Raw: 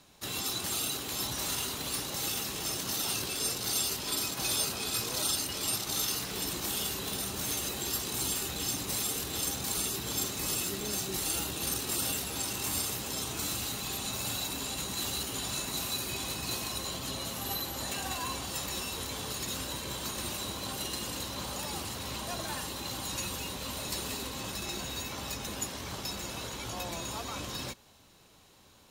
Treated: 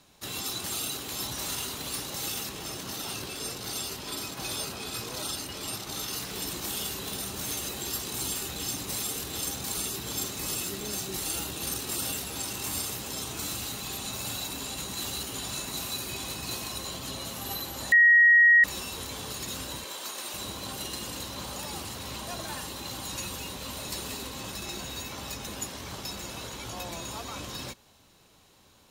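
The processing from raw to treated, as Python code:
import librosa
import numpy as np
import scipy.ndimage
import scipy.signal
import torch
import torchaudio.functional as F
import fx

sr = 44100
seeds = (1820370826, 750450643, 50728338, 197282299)

y = fx.high_shelf(x, sr, hz=3900.0, db=-6.0, at=(2.49, 6.13))
y = fx.highpass(y, sr, hz=430.0, slope=12, at=(19.84, 20.34))
y = fx.edit(y, sr, fx.bleep(start_s=17.92, length_s=0.72, hz=1890.0, db=-14.0), tone=tone)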